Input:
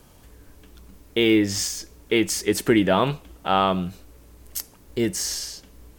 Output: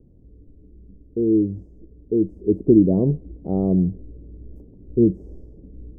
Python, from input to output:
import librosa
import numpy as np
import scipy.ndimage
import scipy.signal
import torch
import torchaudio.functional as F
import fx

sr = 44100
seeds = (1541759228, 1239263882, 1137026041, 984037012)

y = scipy.signal.sosfilt(scipy.signal.cheby2(4, 60, 1400.0, 'lowpass', fs=sr, output='sos'), x)
y = fx.rider(y, sr, range_db=10, speed_s=2.0)
y = y * librosa.db_to_amplitude(6.0)